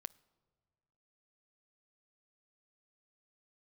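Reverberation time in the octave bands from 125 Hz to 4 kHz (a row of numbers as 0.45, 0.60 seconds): 2.1, 1.8, 1.8, 1.7, 1.4, 0.95 seconds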